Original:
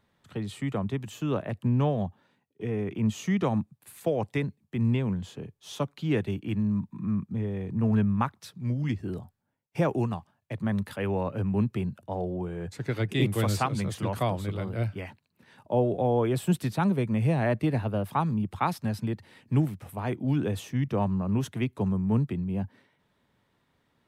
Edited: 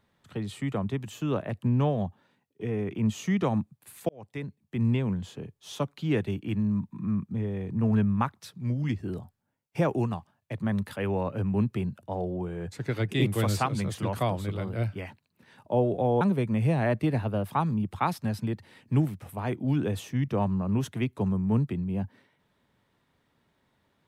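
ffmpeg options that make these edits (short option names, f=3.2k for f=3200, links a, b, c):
-filter_complex "[0:a]asplit=3[a][b][c];[a]atrim=end=4.09,asetpts=PTS-STARTPTS,afade=t=out:st=4.086:d=0.004:c=hsin[d];[b]atrim=start=4.09:end=16.212,asetpts=PTS-STARTPTS,afade=t=in:d=0.71[e];[c]atrim=start=16.808[f];[d][e]concat=n=2:v=0:a=1[g];[g][f]acrossfade=d=0.004:c1=hsin:c2=hsin"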